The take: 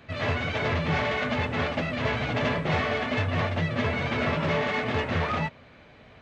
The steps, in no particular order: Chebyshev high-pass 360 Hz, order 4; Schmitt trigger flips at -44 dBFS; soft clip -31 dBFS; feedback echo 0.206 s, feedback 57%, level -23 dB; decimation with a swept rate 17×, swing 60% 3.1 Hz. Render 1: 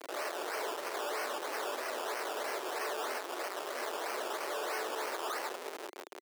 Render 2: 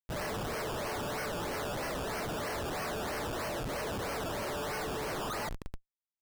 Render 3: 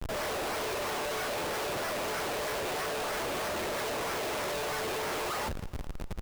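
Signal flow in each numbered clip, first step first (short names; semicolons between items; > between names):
feedback echo > soft clip > Schmitt trigger > decimation with a swept rate > Chebyshev high-pass; Chebyshev high-pass > soft clip > feedback echo > decimation with a swept rate > Schmitt trigger; decimation with a swept rate > Chebyshev high-pass > Schmitt trigger > feedback echo > soft clip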